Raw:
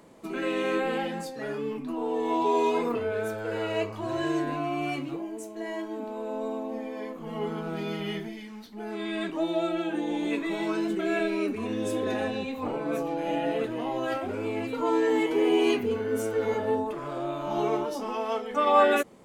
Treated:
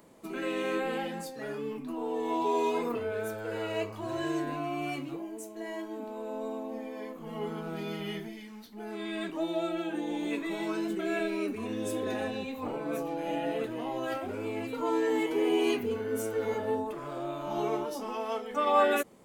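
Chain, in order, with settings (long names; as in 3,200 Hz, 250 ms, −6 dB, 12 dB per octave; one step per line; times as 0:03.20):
high-shelf EQ 11,000 Hz +11 dB
level −4 dB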